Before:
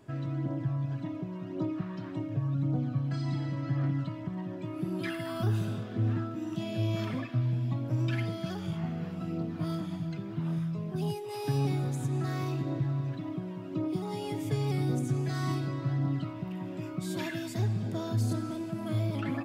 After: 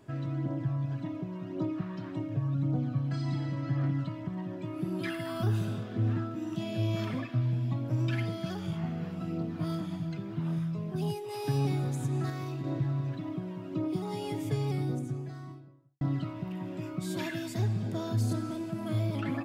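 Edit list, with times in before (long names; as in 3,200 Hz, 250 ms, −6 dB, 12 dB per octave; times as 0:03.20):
0:12.30–0:12.64: clip gain −4 dB
0:14.31–0:16.01: fade out and dull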